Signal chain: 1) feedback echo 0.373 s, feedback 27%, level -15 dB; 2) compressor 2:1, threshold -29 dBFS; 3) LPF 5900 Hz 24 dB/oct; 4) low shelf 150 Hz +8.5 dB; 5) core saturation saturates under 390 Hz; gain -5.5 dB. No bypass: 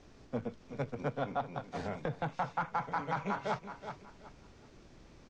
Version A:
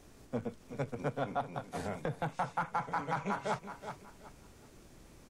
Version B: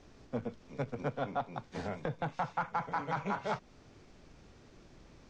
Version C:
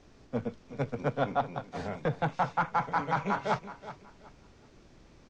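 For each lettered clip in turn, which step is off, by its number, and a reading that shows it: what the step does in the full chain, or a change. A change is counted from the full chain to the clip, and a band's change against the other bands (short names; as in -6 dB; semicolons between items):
3, momentary loudness spread change +10 LU; 1, momentary loudness spread change -6 LU; 2, loudness change +5.5 LU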